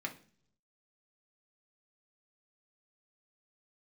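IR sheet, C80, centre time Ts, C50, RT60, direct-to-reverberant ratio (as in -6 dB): 19.0 dB, 9 ms, 13.5 dB, 0.45 s, 0.5 dB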